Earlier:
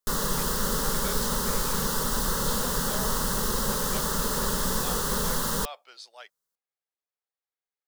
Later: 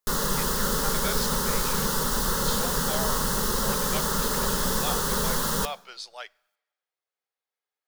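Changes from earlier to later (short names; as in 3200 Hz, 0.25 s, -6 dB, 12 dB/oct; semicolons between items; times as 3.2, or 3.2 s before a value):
speech +6.0 dB; reverb: on, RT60 1.0 s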